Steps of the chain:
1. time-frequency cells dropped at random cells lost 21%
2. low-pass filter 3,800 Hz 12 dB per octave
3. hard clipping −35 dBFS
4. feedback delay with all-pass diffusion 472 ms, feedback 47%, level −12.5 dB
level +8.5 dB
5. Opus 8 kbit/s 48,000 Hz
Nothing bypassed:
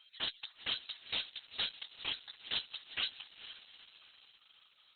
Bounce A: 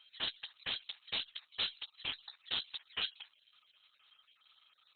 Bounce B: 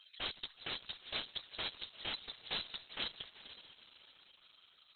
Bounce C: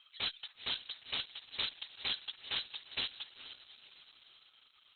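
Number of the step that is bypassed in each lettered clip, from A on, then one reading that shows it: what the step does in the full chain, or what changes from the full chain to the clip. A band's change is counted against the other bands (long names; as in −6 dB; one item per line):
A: 4, change in momentary loudness spread −9 LU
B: 2, 4 kHz band −6.5 dB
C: 1, change in momentary loudness spread +3 LU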